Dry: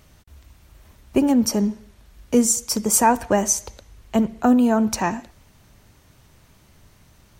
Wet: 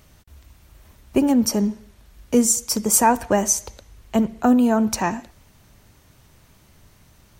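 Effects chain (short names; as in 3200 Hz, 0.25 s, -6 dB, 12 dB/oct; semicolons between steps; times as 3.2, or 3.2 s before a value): high shelf 11000 Hz +3.5 dB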